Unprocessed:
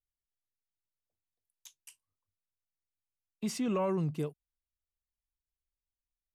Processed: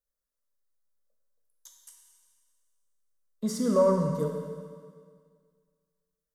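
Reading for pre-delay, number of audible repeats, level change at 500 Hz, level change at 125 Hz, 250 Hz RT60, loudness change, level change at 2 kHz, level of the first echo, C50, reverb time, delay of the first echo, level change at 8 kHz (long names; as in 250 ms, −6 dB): 11 ms, no echo audible, +10.0 dB, +4.0 dB, 1.9 s, +6.5 dB, −1.0 dB, no echo audible, 3.0 dB, 1.9 s, no echo audible, +4.5 dB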